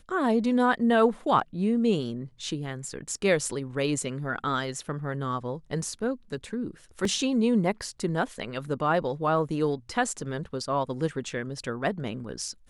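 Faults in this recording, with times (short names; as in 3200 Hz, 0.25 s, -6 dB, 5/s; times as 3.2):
7.05 gap 2.7 ms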